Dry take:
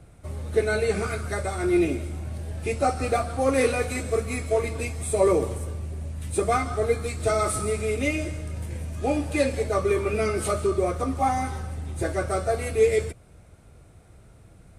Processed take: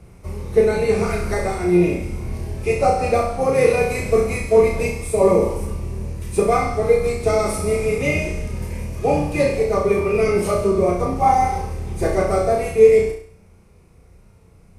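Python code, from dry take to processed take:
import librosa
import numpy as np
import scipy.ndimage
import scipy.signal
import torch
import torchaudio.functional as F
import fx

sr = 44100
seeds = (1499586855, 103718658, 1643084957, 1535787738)

p1 = fx.octave_divider(x, sr, octaves=1, level_db=-1.0)
p2 = fx.rider(p1, sr, range_db=3, speed_s=0.5)
p3 = fx.ripple_eq(p2, sr, per_octave=0.82, db=7)
p4 = p3 + fx.room_flutter(p3, sr, wall_m=5.8, rt60_s=0.55, dry=0)
y = fx.dynamic_eq(p4, sr, hz=630.0, q=1.3, threshold_db=-34.0, ratio=4.0, max_db=7)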